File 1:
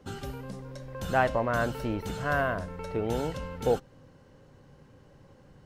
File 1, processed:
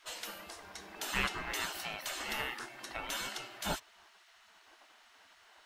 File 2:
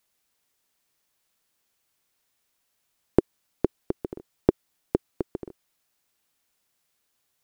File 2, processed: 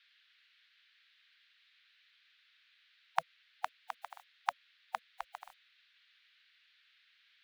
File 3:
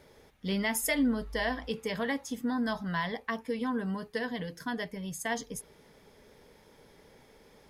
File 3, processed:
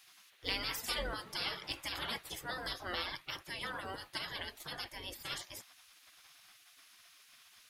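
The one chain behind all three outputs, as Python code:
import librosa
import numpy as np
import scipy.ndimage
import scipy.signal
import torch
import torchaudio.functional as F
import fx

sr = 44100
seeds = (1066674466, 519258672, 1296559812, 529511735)

y = fx.spec_gate(x, sr, threshold_db=-20, keep='weak')
y = fx.dmg_noise_band(y, sr, seeds[0], low_hz=1500.0, high_hz=4100.0, level_db=-76.0)
y = y * 10.0 ** (7.0 / 20.0)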